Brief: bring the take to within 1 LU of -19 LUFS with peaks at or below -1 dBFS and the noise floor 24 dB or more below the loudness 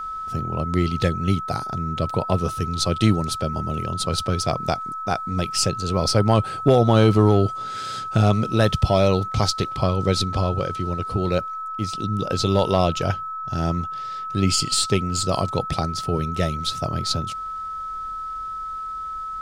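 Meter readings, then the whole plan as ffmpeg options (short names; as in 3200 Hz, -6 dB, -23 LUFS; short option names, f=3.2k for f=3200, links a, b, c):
steady tone 1300 Hz; tone level -28 dBFS; loudness -22.5 LUFS; peak -5.0 dBFS; loudness target -19.0 LUFS
-> -af "bandreject=f=1.3k:w=30"
-af "volume=3.5dB"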